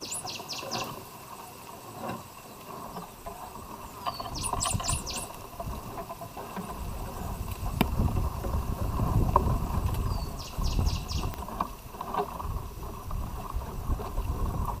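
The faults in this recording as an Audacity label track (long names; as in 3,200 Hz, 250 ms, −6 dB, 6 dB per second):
5.950000	6.720000	clipping −31 dBFS
11.340000	11.340000	click −19 dBFS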